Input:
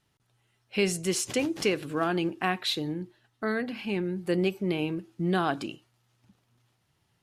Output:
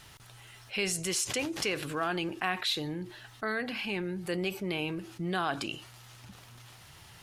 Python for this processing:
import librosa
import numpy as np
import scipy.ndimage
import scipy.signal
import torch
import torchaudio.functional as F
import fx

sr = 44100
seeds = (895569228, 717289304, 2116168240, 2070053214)

y = fx.peak_eq(x, sr, hz=250.0, db=-9.5, octaves=2.4)
y = fx.env_flatten(y, sr, amount_pct=50)
y = F.gain(torch.from_numpy(y), -2.0).numpy()